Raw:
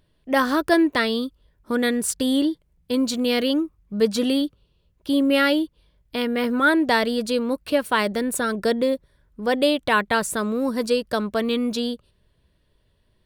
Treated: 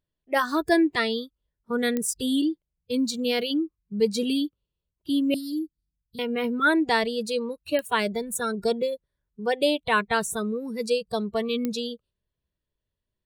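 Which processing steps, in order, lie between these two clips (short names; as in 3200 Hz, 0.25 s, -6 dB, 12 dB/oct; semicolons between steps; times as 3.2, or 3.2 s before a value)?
spectral noise reduction 18 dB; 5.34–6.19 inverse Chebyshev band-stop 630–2500 Hz, stop band 50 dB; pops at 1.97/7.79/11.65, -12 dBFS; gain -2.5 dB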